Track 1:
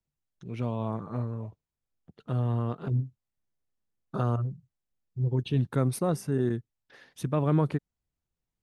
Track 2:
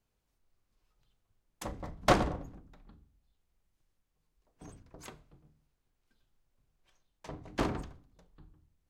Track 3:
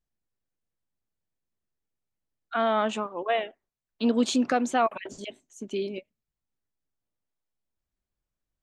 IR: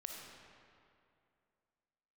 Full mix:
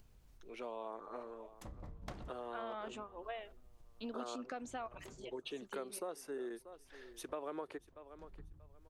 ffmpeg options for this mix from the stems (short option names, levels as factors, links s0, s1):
-filter_complex "[0:a]highpass=f=370:w=0.5412,highpass=f=370:w=1.3066,volume=0.596,asplit=3[s0][s1][s2];[s1]volume=0.1[s3];[1:a]acompressor=mode=upward:threshold=0.00708:ratio=2.5,lowshelf=f=170:g=11.5,acompressor=threshold=0.0224:ratio=5,volume=0.266,asplit=2[s4][s5];[s5]volume=0.0668[s6];[2:a]lowshelf=f=180:g=-9.5,volume=0.188[s7];[s2]apad=whole_len=392208[s8];[s4][s8]sidechaincompress=threshold=0.002:ratio=8:attack=16:release=423[s9];[s3][s6]amix=inputs=2:normalize=0,aecho=0:1:635|1270|1905|2540:1|0.22|0.0484|0.0106[s10];[s0][s9][s7][s10]amix=inputs=4:normalize=0,acompressor=threshold=0.01:ratio=4"